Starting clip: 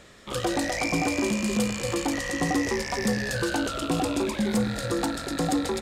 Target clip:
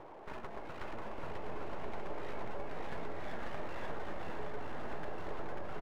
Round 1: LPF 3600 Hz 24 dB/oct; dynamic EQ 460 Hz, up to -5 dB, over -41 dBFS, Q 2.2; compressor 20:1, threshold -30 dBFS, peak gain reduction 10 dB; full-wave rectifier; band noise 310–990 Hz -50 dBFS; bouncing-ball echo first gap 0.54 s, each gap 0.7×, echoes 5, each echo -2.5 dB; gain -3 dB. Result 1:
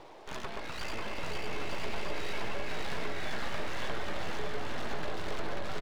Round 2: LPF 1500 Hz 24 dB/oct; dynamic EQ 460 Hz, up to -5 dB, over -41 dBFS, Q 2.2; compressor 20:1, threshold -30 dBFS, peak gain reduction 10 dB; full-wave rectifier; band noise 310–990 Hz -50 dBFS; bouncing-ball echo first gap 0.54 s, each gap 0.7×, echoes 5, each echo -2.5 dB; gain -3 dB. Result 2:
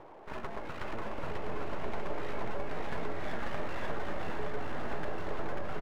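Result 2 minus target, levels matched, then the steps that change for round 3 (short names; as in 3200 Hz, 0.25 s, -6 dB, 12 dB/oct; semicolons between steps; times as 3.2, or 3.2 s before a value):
compressor: peak gain reduction -6 dB
change: compressor 20:1, threshold -36.5 dBFS, peak gain reduction 16.5 dB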